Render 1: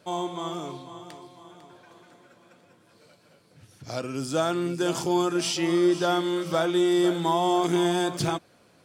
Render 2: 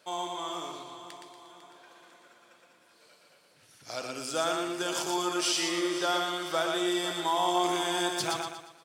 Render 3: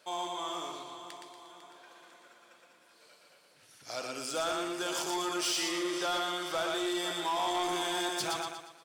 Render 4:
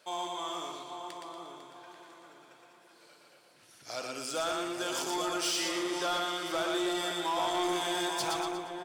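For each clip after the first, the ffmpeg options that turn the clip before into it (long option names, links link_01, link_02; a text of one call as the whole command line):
ffmpeg -i in.wav -filter_complex "[0:a]highpass=frequency=990:poles=1,asplit=2[link_01][link_02];[link_02]aecho=0:1:118|236|354|472|590:0.631|0.259|0.106|0.0435|0.0178[link_03];[link_01][link_03]amix=inputs=2:normalize=0" out.wav
ffmpeg -i in.wav -af "asoftclip=type=tanh:threshold=-26dB,lowshelf=frequency=200:gain=-6.5" out.wav
ffmpeg -i in.wav -filter_complex "[0:a]asplit=2[link_01][link_02];[link_02]adelay=838,lowpass=frequency=850:poles=1,volume=-4dB,asplit=2[link_03][link_04];[link_04]adelay=838,lowpass=frequency=850:poles=1,volume=0.38,asplit=2[link_05][link_06];[link_06]adelay=838,lowpass=frequency=850:poles=1,volume=0.38,asplit=2[link_07][link_08];[link_08]adelay=838,lowpass=frequency=850:poles=1,volume=0.38,asplit=2[link_09][link_10];[link_10]adelay=838,lowpass=frequency=850:poles=1,volume=0.38[link_11];[link_01][link_03][link_05][link_07][link_09][link_11]amix=inputs=6:normalize=0" out.wav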